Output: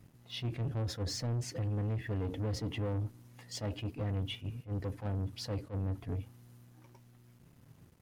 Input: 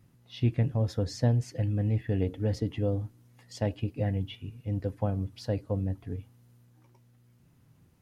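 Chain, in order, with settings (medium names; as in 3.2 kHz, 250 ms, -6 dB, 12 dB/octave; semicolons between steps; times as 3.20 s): peak limiter -26.5 dBFS, peak gain reduction 11.5 dB; waveshaping leveller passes 2; attacks held to a fixed rise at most 290 dB/s; trim -3.5 dB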